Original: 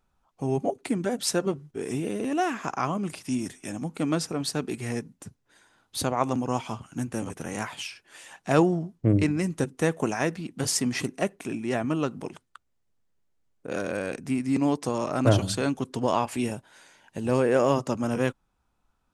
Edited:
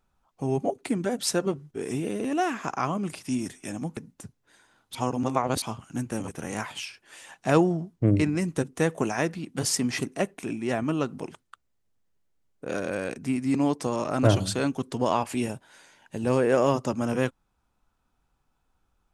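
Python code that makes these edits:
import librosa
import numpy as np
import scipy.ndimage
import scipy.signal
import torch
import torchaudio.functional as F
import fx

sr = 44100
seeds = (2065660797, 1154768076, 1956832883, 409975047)

y = fx.edit(x, sr, fx.cut(start_s=3.97, length_s=1.02),
    fx.reverse_span(start_s=5.97, length_s=0.67), tone=tone)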